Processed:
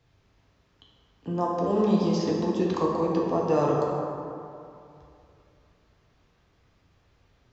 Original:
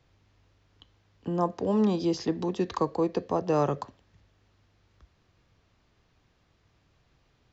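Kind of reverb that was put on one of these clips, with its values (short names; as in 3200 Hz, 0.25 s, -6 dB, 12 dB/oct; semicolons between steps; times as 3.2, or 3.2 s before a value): plate-style reverb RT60 2.6 s, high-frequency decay 0.45×, DRR -3 dB; gain -2 dB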